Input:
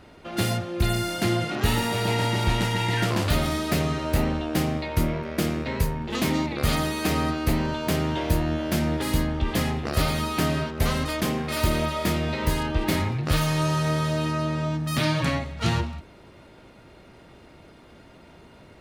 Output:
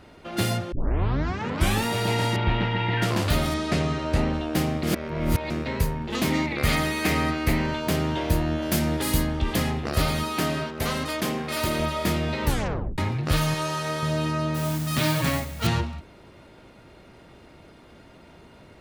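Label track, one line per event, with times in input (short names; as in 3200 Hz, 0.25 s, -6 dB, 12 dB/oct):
0.720000	0.720000	tape start 1.13 s
2.360000	3.020000	LPF 3300 Hz 24 dB/oct
3.540000	4.330000	Bessel low-pass 6800 Hz, order 4
4.830000	5.500000	reverse
6.320000	7.800000	bell 2100 Hz +8 dB 0.51 oct
8.620000	9.560000	high shelf 6300 Hz +8.5 dB
10.230000	11.790000	HPF 180 Hz 6 dB/oct
12.450000	12.450000	tape stop 0.53 s
13.540000	14.030000	bell 100 Hz -11.5 dB 2.6 oct
14.540000	15.670000	modulation noise under the signal 12 dB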